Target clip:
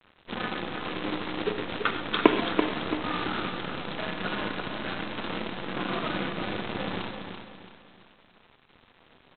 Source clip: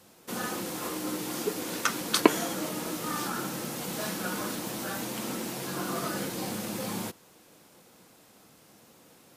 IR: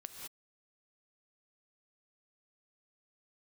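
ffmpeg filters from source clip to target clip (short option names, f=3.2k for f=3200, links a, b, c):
-filter_complex "[0:a]aresample=8000,acrusher=bits=6:dc=4:mix=0:aa=0.000001,aresample=44100,aecho=1:1:335|670|1005|1340:0.447|0.165|0.0612|0.0226[a];[1:a]atrim=start_sample=2205,atrim=end_sample=6174[b];[a][b]afir=irnorm=-1:irlink=0,volume=7dB"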